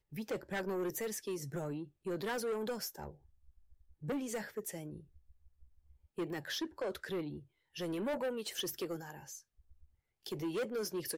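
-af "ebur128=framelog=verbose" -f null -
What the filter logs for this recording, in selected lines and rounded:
Integrated loudness:
  I:         -39.7 LUFS
  Threshold: -50.4 LUFS
Loudness range:
  LRA:         4.6 LU
  Threshold: -61.2 LUFS
  LRA low:   -44.2 LUFS
  LRA high:  -39.5 LUFS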